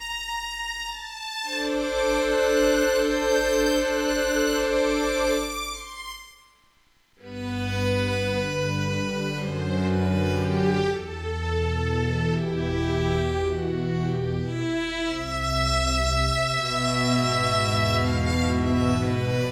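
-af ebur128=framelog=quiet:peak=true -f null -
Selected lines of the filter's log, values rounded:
Integrated loudness:
  I:         -24.4 LUFS
  Threshold: -34.8 LUFS
Loudness range:
  LRA:         5.5 LU
  Threshold: -44.8 LUFS
  LRA low:   -27.9 LUFS
  LRA high:  -22.4 LUFS
True peak:
  Peak:      -10.5 dBFS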